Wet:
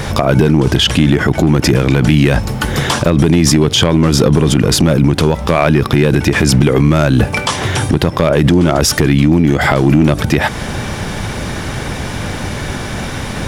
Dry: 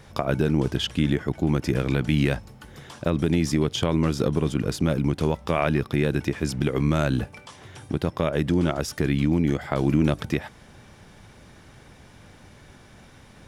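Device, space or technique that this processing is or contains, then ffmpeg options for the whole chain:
loud club master: -af "acompressor=threshold=0.0282:ratio=1.5,asoftclip=type=hard:threshold=0.126,alimiter=level_in=28.2:limit=0.891:release=50:level=0:latency=1,volume=0.891"

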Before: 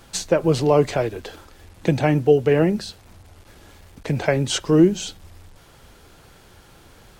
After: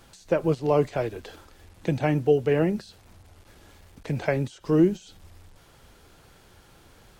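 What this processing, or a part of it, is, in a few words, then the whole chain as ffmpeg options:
de-esser from a sidechain: -filter_complex "[0:a]asplit=2[s0][s1];[s1]highpass=f=5600:w=0.5412,highpass=f=5600:w=1.3066,apad=whole_len=317327[s2];[s0][s2]sidechaincompress=threshold=0.00631:ratio=16:attack=1.5:release=71,volume=0.562"

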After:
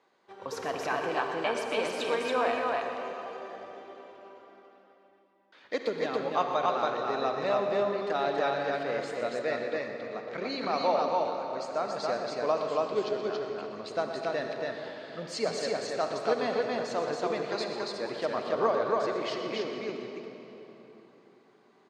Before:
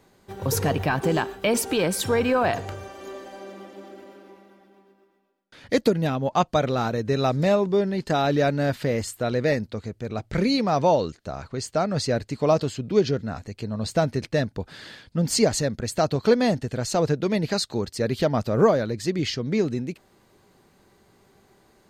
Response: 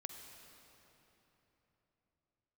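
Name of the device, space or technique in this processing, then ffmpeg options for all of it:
station announcement: -filter_complex "[0:a]highpass=420,lowpass=4200,equalizer=f=1100:t=o:w=0.42:g=4.5,aecho=1:1:122.4|279.9:0.282|0.794[s0];[1:a]atrim=start_sample=2205[s1];[s0][s1]afir=irnorm=-1:irlink=0,asettb=1/sr,asplit=3[s2][s3][s4];[s2]atrim=end=9.394[s5];[s3]atrim=start=9.39:end=10.49,asetpts=PTS-STARTPTS,afade=t=in:d=0.004:c=qsin,afade=t=out:st=1.096:d=0.004:c=qsin,lowpass=f=7500:w=0.5412,lowpass=f=7500:w=1.3066[s6];[s4]atrim=start=10.486[s7];[s5][s6]acrossfade=d=0.004:c1=hsin:c2=qsin[s8];[s8][s7]acrossfade=d=0.004:c1=qsin:c2=hsin,volume=0.708"

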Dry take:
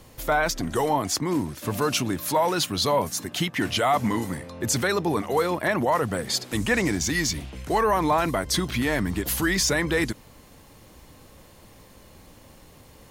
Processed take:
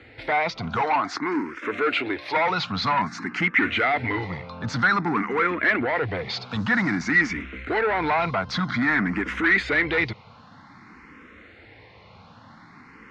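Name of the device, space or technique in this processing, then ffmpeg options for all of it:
barber-pole phaser into a guitar amplifier: -filter_complex "[0:a]asettb=1/sr,asplit=3[s0][s1][s2];[s0]atrim=end=0.814[s3];[s1]atrim=start=0.81:end=2.5,asetpts=PTS-STARTPTS,afade=t=in:d=0.004:c=qsin,afade=t=out:st=1.686:d=0.004:c=qsin,lowshelf=f=260:t=q:w=1.5:g=-11[s4];[s2]atrim=start=2.496[s5];[s3][s4]acrossfade=d=0.004:c1=hsin:c2=qsin[s6];[s6][s5]acrossfade=d=0.004:c1=qsin:c2=hsin,asplit=2[s7][s8];[s8]afreqshift=0.52[s9];[s7][s9]amix=inputs=2:normalize=1,asoftclip=type=tanh:threshold=0.0596,highpass=110,equalizer=f=150:t=q:w=4:g=-5,equalizer=f=360:t=q:w=4:g=-4,equalizer=f=570:t=q:w=4:g=-9,equalizer=f=1400:t=q:w=4:g=8,equalizer=f=2100:t=q:w=4:g=8,equalizer=f=3100:t=q:w=4:g=-6,lowpass=f=3800:w=0.5412,lowpass=f=3800:w=1.3066,volume=2.37"

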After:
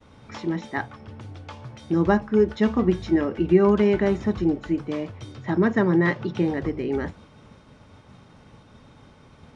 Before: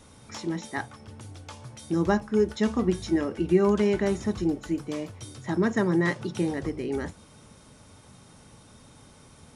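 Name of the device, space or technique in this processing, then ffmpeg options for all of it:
hearing-loss simulation: -filter_complex "[0:a]lowpass=3300,agate=range=0.0224:threshold=0.00316:ratio=3:detection=peak,asettb=1/sr,asplit=3[s0][s1][s2];[s0]atrim=end=5.324[s3];[s1]atrim=start=5.32:end=6.45,asetpts=PTS-STARTPTS,afade=t=in:d=0.004:c=qsin,afade=t=out:st=1.126:d=0.004:c=qsin,lowpass=7300[s4];[s2]atrim=start=6.446[s5];[s3][s4]acrossfade=d=0.004:c1=hsin:c2=qsin[s6];[s6][s5]acrossfade=d=0.004:c1=qsin:c2=hsin,volume=1.58"

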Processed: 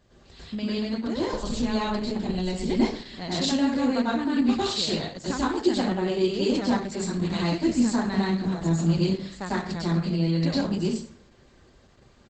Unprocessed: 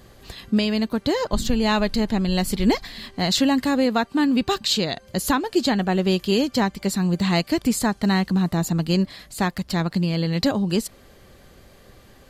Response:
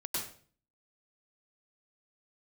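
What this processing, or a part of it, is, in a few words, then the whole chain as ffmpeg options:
speakerphone in a meeting room: -filter_complex "[0:a]asettb=1/sr,asplit=3[s0][s1][s2];[s0]atrim=end=1.854[s3];[s1]atrim=start=1.85:end=3.34,asetpts=PTS-STARTPTS,afade=t=in:d=0.004:c=qsin,afade=t=out:st=1.486:d=0.004:c=qsin,adynamicequalizer=threshold=0.00562:dfrequency=1300:dqfactor=2.6:tfrequency=1300:tqfactor=2.6:attack=5:release=100:ratio=0.375:range=3:mode=cutabove:tftype=bell[s4];[s2]atrim=start=3.336[s5];[s3][s4]acrossfade=d=0.004:c1=hsin:c2=qsin[s6];[s6][s5]acrossfade=d=0.004:c1=qsin:c2=hsin[s7];[1:a]atrim=start_sample=2205[s8];[s7][s8]afir=irnorm=-1:irlink=0,asplit=2[s9][s10];[s10]adelay=130,highpass=300,lowpass=3400,asoftclip=type=hard:threshold=0.266,volume=0.0708[s11];[s9][s11]amix=inputs=2:normalize=0,dynaudnorm=f=400:g=13:m=3.55,volume=0.355" -ar 48000 -c:a libopus -b:a 12k

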